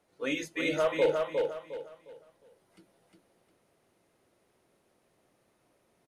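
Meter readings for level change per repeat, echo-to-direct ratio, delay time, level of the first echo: -10.5 dB, -3.0 dB, 0.357 s, -3.5 dB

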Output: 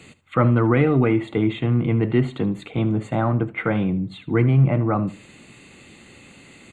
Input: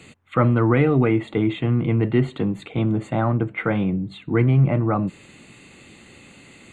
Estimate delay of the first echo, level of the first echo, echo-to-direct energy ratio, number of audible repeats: 75 ms, -17.0 dB, -17.0 dB, 2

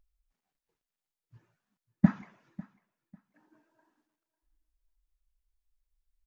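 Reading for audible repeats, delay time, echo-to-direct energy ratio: 2, 0.547 s, -21.0 dB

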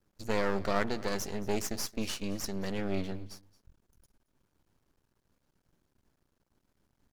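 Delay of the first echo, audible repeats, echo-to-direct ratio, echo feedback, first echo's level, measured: 0.223 s, 1, -20.5 dB, no steady repeat, -20.5 dB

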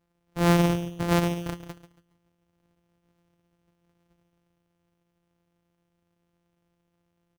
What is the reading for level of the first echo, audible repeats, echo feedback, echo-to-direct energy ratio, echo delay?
-13.0 dB, 3, 30%, -12.5 dB, 0.139 s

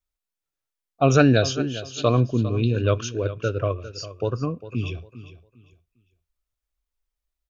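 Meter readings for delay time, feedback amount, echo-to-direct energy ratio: 0.402 s, 25%, -14.0 dB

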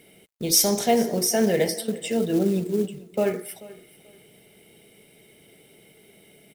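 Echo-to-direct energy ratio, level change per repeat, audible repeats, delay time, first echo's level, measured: -20.0 dB, -13.0 dB, 2, 0.436 s, -20.0 dB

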